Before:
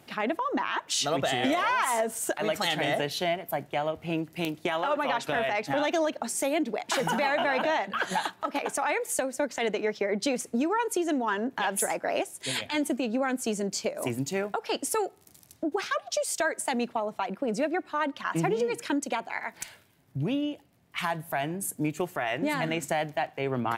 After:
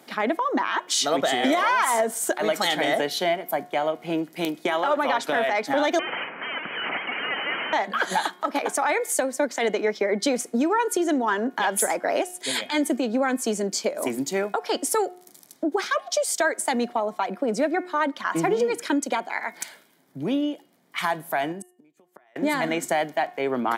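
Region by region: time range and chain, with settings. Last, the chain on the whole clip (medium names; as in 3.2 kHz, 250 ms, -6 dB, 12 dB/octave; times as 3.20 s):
5.99–7.73 s: one-bit comparator + inverse Chebyshev high-pass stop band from 190 Hz, stop band 70 dB + frequency inversion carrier 3.7 kHz
21.52–22.36 s: inverted gate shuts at -26 dBFS, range -35 dB + compression 2.5:1, threshold -37 dBFS
whole clip: high-pass 200 Hz 24 dB/octave; band-stop 2.7 kHz, Q 6.8; de-hum 360.3 Hz, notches 9; trim +5 dB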